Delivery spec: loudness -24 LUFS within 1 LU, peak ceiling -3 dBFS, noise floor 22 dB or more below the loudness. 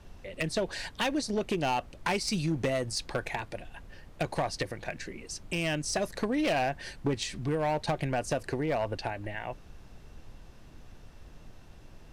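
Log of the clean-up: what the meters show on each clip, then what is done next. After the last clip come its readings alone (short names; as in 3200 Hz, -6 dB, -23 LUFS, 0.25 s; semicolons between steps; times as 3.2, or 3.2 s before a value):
clipped 1.3%; flat tops at -23.0 dBFS; noise floor -52 dBFS; noise floor target -54 dBFS; loudness -32.0 LUFS; peak -23.0 dBFS; loudness target -24.0 LUFS
-> clip repair -23 dBFS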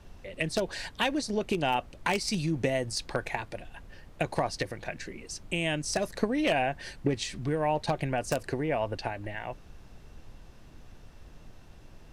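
clipped 0.0%; noise floor -52 dBFS; noise floor target -53 dBFS
-> noise print and reduce 6 dB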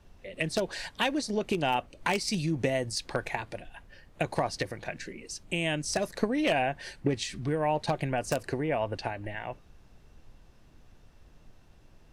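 noise floor -57 dBFS; loudness -31.0 LUFS; peak -14.0 dBFS; loudness target -24.0 LUFS
-> gain +7 dB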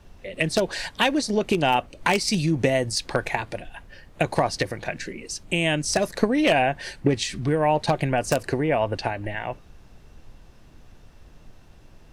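loudness -24.0 LUFS; peak -7.0 dBFS; noise floor -50 dBFS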